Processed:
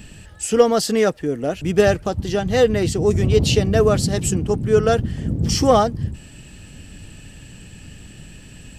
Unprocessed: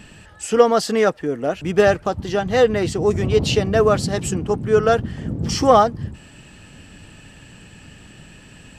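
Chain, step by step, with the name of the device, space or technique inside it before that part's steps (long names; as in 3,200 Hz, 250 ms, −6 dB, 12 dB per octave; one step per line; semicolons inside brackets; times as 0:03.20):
smiley-face EQ (low-shelf EQ 90 Hz +8 dB; parametric band 1,100 Hz −6 dB 1.6 octaves; high-shelf EQ 9,000 Hz +8.5 dB)
level +1 dB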